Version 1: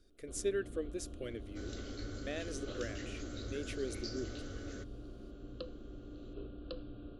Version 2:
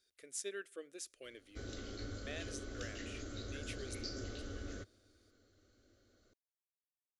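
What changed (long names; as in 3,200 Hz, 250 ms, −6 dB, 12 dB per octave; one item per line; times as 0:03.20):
speech: add high-pass filter 1,300 Hz 6 dB per octave
first sound: muted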